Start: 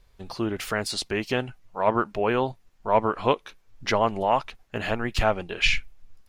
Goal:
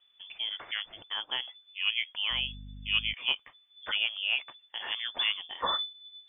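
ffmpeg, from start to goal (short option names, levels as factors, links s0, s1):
-filter_complex "[0:a]lowpass=f=3000:t=q:w=0.5098,lowpass=f=3000:t=q:w=0.6013,lowpass=f=3000:t=q:w=0.9,lowpass=f=3000:t=q:w=2.563,afreqshift=-3500,asettb=1/sr,asplit=3[s0][s1][s2];[s0]atrim=end=2.314[s3];[s1]atrim=start=2.31:end=3.14,asetpts=PTS-STARTPTS,afade=t=in:d=0.004:c=qsin,afade=t=out:st=0.826:d=0.004:c=qsin,aeval=exprs='val(0)+0.0178*(sin(2*PI*50*n/s)+sin(2*PI*2*50*n/s)/2+sin(2*PI*3*50*n/s)/3+sin(2*PI*4*50*n/s)/4+sin(2*PI*5*50*n/s)/5)':c=same[s4];[s2]atrim=start=3.136[s5];[s3][s4]acrossfade=d=0.004:c1=hsin:c2=qsin[s6];[s6][s5]acrossfade=d=0.004:c1=qsin:c2=hsin,asettb=1/sr,asplit=3[s7][s8][s9];[s7]atrim=end=4.334[s10];[s8]atrim=start=4.33:end=4.79,asetpts=PTS-STARTPTS,afade=t=in:d=0.004:c=qsin,afade=t=out:st=0.456:d=0.004:c=qsin,highpass=100[s11];[s9]atrim=start=4.786[s12];[s10][s11]acrossfade=d=0.004:c1=hsin:c2=qsin[s13];[s13][s12]acrossfade=d=0.004:c1=qsin:c2=hsin,volume=0.398"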